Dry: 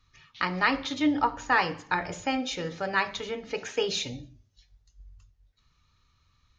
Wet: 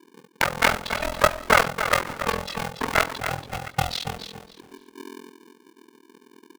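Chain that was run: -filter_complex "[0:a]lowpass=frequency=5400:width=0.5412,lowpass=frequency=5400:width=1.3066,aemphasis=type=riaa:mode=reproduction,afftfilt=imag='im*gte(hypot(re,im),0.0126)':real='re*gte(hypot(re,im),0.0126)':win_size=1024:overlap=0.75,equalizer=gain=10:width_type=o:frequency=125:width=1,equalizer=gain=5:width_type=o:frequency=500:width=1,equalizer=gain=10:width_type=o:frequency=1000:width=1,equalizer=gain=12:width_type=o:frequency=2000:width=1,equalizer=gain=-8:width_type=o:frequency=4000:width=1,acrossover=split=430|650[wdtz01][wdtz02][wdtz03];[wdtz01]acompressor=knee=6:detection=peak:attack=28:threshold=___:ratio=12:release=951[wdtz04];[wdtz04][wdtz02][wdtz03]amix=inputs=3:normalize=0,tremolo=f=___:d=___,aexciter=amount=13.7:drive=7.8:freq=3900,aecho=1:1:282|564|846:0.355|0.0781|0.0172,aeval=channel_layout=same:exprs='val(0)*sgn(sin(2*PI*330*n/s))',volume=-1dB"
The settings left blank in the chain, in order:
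-31dB, 42, 1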